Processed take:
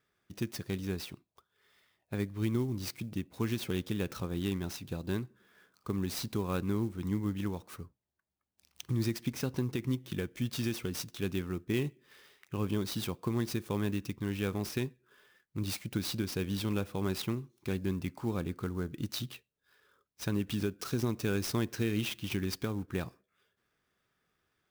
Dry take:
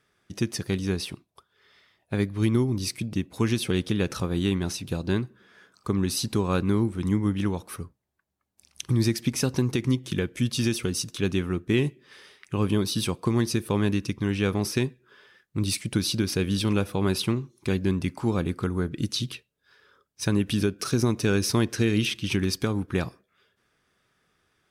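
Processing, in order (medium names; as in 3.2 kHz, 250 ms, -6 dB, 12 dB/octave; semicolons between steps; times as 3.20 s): 9.35–10.10 s: treble shelf 8.8 kHz -10.5 dB; sampling jitter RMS 0.022 ms; trim -8.5 dB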